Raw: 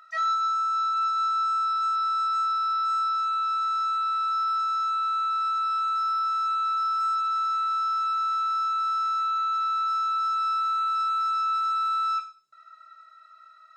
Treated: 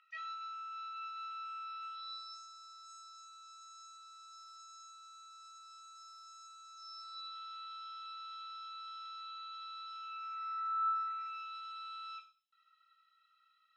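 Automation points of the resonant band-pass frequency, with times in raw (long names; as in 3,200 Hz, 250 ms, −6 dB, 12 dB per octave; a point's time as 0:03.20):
resonant band-pass, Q 5.9
0:01.85 2,700 Hz
0:02.51 6,900 Hz
0:06.68 6,900 Hz
0:07.39 3,300 Hz
0:09.91 3,300 Hz
0:10.88 1,500 Hz
0:11.49 3,100 Hz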